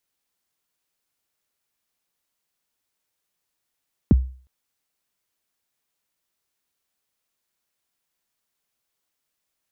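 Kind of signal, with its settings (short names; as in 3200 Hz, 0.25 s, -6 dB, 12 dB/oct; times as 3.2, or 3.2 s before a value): kick drum length 0.36 s, from 330 Hz, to 64 Hz, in 23 ms, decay 0.42 s, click off, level -7.5 dB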